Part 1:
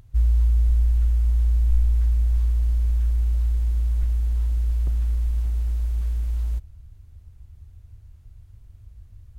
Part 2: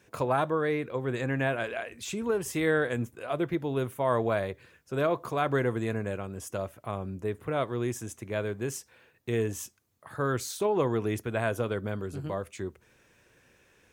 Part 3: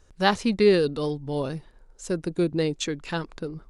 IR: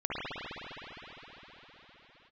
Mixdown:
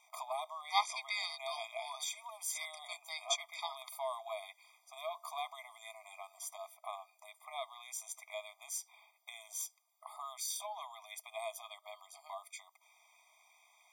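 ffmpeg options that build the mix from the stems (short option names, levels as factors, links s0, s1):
-filter_complex "[0:a]acompressor=threshold=0.0158:ratio=2.5,adelay=100,volume=0.501[s0];[1:a]volume=1.33[s1];[2:a]highpass=1200,adelay=500,volume=0.891[s2];[s0][s1]amix=inputs=2:normalize=0,acrossover=split=340|3000[s3][s4][s5];[s4]acompressor=threshold=0.00501:ratio=2[s6];[s3][s6][s5]amix=inputs=3:normalize=0,alimiter=limit=0.0794:level=0:latency=1:release=104,volume=1[s7];[s2][s7]amix=inputs=2:normalize=0,asuperstop=centerf=1800:order=8:qfactor=4.6,afftfilt=real='re*eq(mod(floor(b*sr/1024/630),2),1)':imag='im*eq(mod(floor(b*sr/1024/630),2),1)':win_size=1024:overlap=0.75"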